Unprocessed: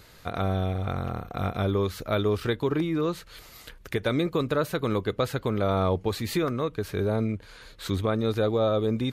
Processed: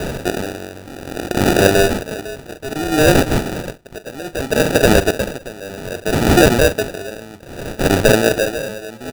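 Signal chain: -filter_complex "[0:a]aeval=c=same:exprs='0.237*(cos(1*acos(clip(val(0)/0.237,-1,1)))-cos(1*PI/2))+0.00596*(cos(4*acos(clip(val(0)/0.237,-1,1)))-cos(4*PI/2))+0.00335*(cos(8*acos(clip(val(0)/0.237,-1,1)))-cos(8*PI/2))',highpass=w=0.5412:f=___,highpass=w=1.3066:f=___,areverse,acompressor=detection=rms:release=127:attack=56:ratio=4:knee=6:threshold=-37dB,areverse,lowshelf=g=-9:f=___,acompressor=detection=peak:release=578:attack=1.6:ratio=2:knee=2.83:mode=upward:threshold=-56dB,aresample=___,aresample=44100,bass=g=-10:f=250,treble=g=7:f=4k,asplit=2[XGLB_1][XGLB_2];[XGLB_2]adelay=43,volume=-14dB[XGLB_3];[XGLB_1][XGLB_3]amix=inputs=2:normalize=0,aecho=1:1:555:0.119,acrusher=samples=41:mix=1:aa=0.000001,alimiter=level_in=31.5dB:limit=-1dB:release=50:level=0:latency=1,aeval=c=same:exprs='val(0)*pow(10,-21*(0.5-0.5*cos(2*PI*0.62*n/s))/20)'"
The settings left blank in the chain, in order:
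56, 56, 280, 11025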